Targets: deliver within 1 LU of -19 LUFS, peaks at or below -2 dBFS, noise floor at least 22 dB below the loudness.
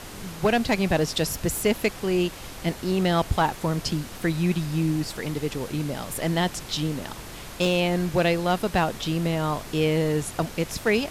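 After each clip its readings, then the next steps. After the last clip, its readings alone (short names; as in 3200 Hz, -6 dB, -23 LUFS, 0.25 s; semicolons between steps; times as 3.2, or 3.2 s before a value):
clipped 0.3%; flat tops at -13.5 dBFS; noise floor -40 dBFS; noise floor target -48 dBFS; loudness -25.5 LUFS; peak -13.5 dBFS; loudness target -19.0 LUFS
-> clip repair -13.5 dBFS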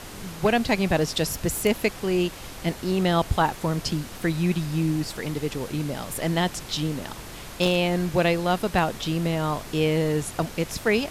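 clipped 0.0%; noise floor -40 dBFS; noise floor target -47 dBFS
-> noise print and reduce 7 dB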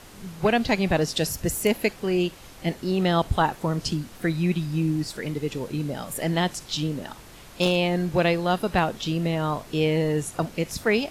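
noise floor -46 dBFS; noise floor target -48 dBFS
-> noise print and reduce 6 dB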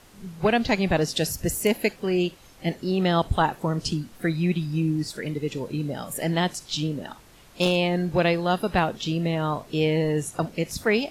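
noise floor -51 dBFS; loudness -25.5 LUFS; peak -5.0 dBFS; loudness target -19.0 LUFS
-> gain +6.5 dB; limiter -2 dBFS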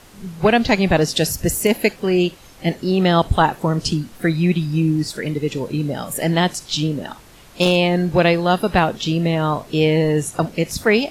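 loudness -19.0 LUFS; peak -2.0 dBFS; noise floor -44 dBFS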